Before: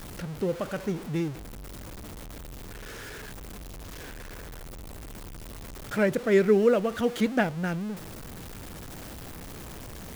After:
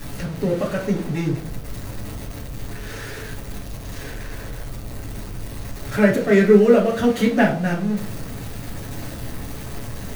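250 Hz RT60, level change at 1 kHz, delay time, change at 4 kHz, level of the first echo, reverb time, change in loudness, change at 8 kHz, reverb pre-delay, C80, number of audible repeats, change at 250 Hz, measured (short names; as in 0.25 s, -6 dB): 0.60 s, +7.0 dB, none, +6.0 dB, none, 0.50 s, +7.0 dB, +6.0 dB, 7 ms, 14.5 dB, none, +9.0 dB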